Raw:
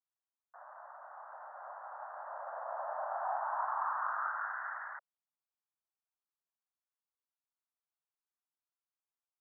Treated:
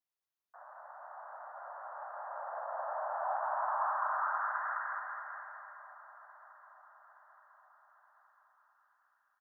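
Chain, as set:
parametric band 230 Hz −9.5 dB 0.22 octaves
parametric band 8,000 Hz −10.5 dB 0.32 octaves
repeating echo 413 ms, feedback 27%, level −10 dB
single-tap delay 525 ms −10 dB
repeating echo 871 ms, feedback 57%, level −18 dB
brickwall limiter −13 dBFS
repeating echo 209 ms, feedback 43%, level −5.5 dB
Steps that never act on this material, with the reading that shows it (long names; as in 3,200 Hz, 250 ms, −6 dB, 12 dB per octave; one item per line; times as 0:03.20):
parametric band 230 Hz: nothing at its input below 480 Hz
parametric band 8,000 Hz: nothing at its input above 2,000 Hz
brickwall limiter −13 dBFS: peak of its input −22.0 dBFS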